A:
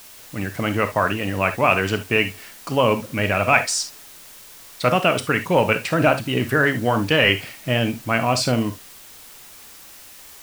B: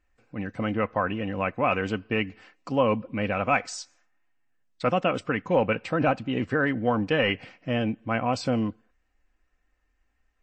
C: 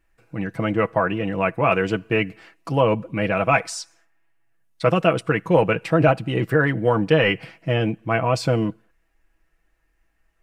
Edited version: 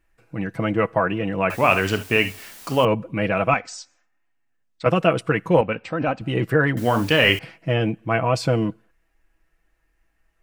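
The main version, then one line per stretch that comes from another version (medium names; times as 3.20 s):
C
1.50–2.85 s: from A
3.54–4.86 s: from B
5.61–6.21 s: from B
6.77–7.39 s: from A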